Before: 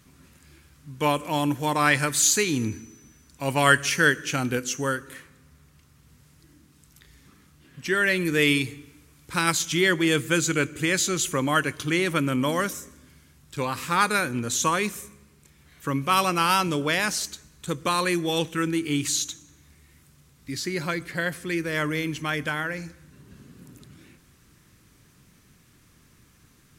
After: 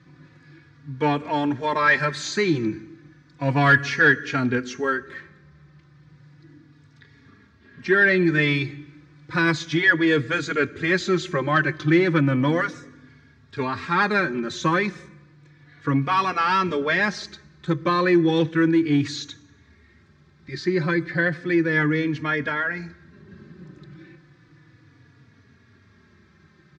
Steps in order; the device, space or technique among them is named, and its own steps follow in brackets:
barber-pole flanger into a guitar amplifier (barber-pole flanger 3.5 ms −0.33 Hz; soft clipping −17 dBFS, distortion −18 dB; loudspeaker in its box 94–4,400 Hz, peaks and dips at 98 Hz +7 dB, 150 Hz +5 dB, 340 Hz +6 dB, 1,700 Hz +7 dB, 2,900 Hz −9 dB)
0:17.73–0:18.24: parametric band 11,000 Hz −4.5 dB 1.5 octaves
level +5 dB

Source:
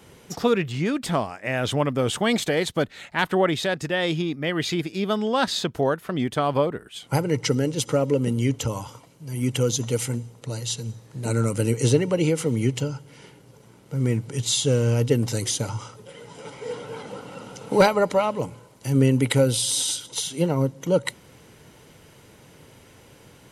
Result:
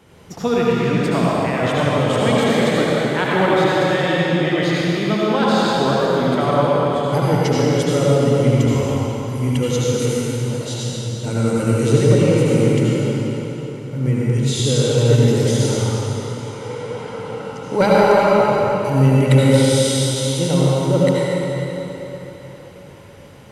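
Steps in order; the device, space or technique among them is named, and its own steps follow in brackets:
swimming-pool hall (convolution reverb RT60 3.9 s, pre-delay 68 ms, DRR −7 dB; high-shelf EQ 4,100 Hz −7.5 dB)

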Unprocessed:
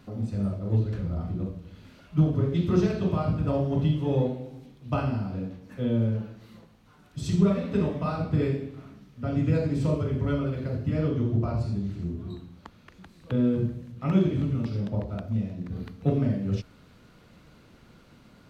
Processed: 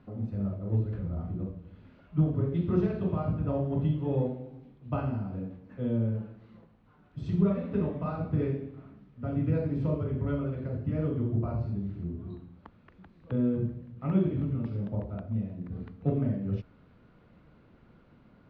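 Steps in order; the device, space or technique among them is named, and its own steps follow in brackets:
phone in a pocket (low-pass filter 3,300 Hz 12 dB per octave; high-shelf EQ 2,500 Hz −10.5 dB)
level −3.5 dB

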